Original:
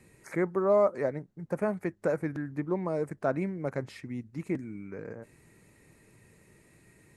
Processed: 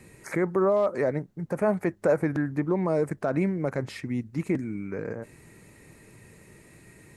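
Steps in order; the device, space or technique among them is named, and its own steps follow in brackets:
clipper into limiter (hard clipping −15 dBFS, distortion −35 dB; brickwall limiter −23 dBFS, peak gain reduction 8 dB)
0:01.61–0:02.64: dynamic equaliser 740 Hz, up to +4 dB, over −44 dBFS, Q 1
level +7.5 dB

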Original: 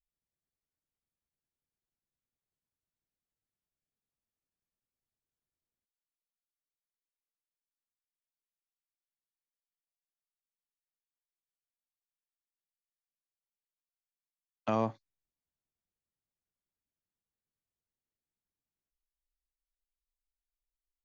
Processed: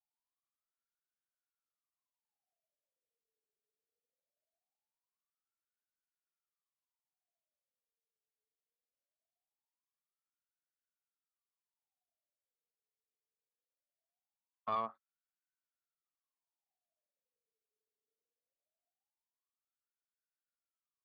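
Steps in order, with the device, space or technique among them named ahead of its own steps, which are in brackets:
wah-wah guitar rig (LFO wah 0.21 Hz 430–1,500 Hz, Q 15; tube saturation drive 41 dB, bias 0.4; loudspeaker in its box 91–4,600 Hz, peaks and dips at 220 Hz +9 dB, 430 Hz +6 dB, 680 Hz +9 dB, 2,300 Hz −5 dB)
level +11 dB

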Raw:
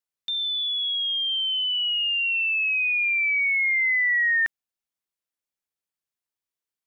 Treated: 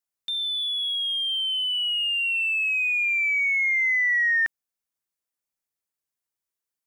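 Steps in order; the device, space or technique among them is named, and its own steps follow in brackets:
exciter from parts (in parallel at −6.5 dB: high-pass filter 3,600 Hz 12 dB per octave + soft clipping −38 dBFS, distortion −11 dB + high-pass filter 2,100 Hz)

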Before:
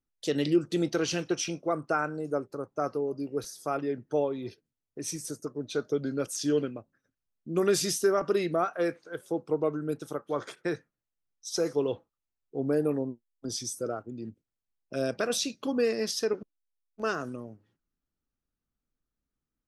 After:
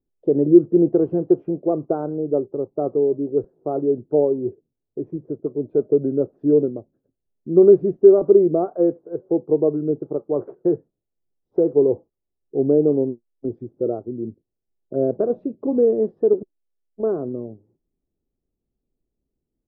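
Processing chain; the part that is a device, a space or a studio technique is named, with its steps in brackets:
under water (low-pass filter 700 Hz 24 dB per octave; parametric band 380 Hz +8 dB 0.43 octaves)
level +7.5 dB

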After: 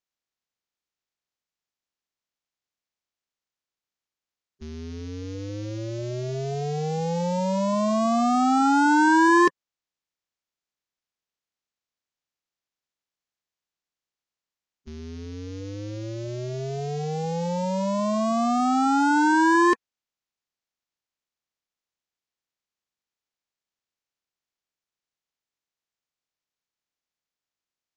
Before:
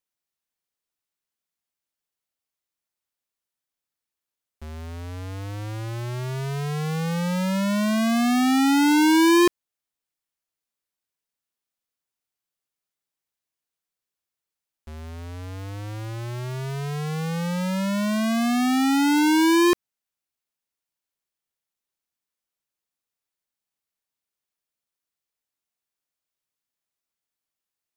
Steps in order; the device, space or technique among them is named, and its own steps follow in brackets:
clip after many re-uploads (low-pass filter 6,400 Hz 24 dB per octave; spectral magnitudes quantised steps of 30 dB)

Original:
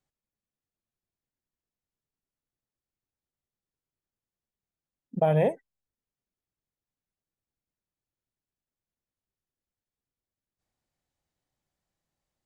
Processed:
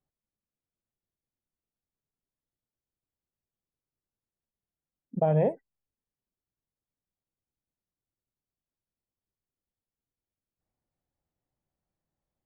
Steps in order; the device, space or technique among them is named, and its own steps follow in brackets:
through cloth (high-shelf EQ 2,000 Hz −17.5 dB)

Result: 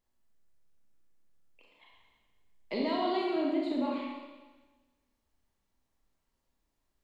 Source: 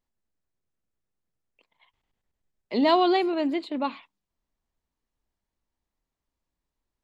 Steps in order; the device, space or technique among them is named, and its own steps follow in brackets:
0:03.36–0:03.94: tilt shelving filter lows +4.5 dB
serial compression, peaks first (downward compressor, threshold −28 dBFS, peak gain reduction 12.5 dB; downward compressor 2 to 1, threshold −35 dBFS, peak gain reduction 5 dB)
four-comb reverb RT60 1.3 s, combs from 28 ms, DRR −3 dB

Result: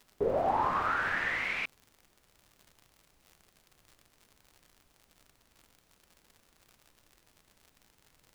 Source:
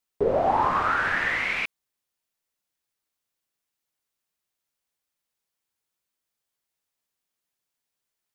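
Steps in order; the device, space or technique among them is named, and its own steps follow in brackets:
vinyl LP (surface crackle 99 per second −38 dBFS; pink noise bed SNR 31 dB)
level −6.5 dB

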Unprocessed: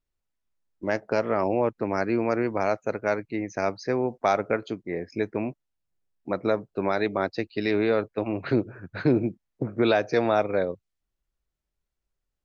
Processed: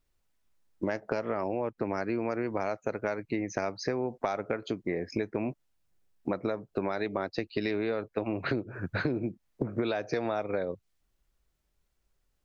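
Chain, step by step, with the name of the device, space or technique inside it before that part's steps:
serial compression, leveller first (downward compressor 1.5 to 1, threshold −31 dBFS, peak gain reduction 5.5 dB; downward compressor 6 to 1, threshold −35 dBFS, peak gain reduction 13 dB)
level +7.5 dB

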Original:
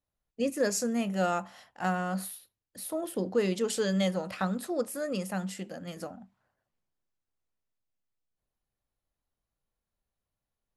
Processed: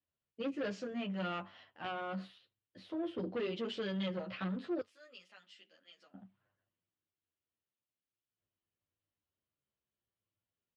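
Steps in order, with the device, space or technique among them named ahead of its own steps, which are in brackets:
0:04.80–0:06.14: first difference
barber-pole flanger into a guitar amplifier (barber-pole flanger 10.4 ms −0.54 Hz; soft clipping −31 dBFS, distortion −10 dB; loudspeaker in its box 96–3,900 Hz, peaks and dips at 96 Hz +9 dB, 330 Hz +5 dB, 800 Hz −6 dB, 3,000 Hz +6 dB)
level −2 dB

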